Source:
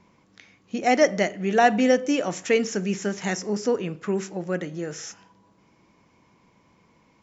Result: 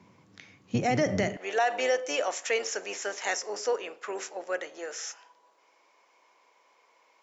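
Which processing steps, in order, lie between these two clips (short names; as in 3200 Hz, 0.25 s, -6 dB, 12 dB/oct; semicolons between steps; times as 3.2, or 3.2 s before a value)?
octaver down 1 oct, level +1 dB; HPF 110 Hz 24 dB/oct, from 1.37 s 510 Hz; limiter -16.5 dBFS, peak gain reduction 10.5 dB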